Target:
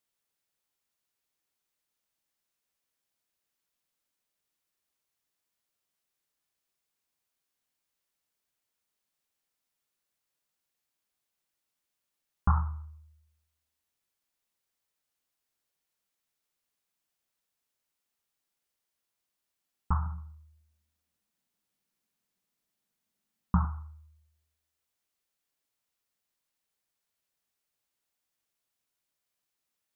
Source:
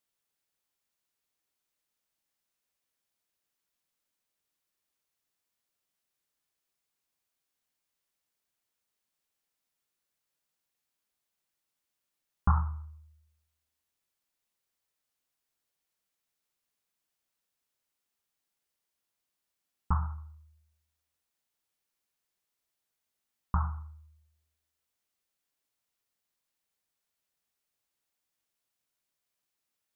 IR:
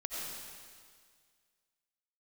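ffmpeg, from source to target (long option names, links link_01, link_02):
-filter_complex "[0:a]asettb=1/sr,asplit=3[link_01][link_02][link_03];[link_01]atrim=end=20.064[link_04];[link_02]atrim=start=20.06:end=23.65,asetpts=PTS-STARTPTS,afade=type=in:duration=0.004:curve=qsin,afade=type=out:start_time=3.586:duration=0.004:curve=qsin,equalizer=frequency=200:width_type=o:width=0.96:gain=13[link_05];[link_03]atrim=start=23.646[link_06];[link_04][link_05]acrossfade=duration=0.004:curve1=hsin:curve2=qsin[link_07];[link_07][link_06]acrossfade=duration=0.004:curve1=qsin:curve2=hsin"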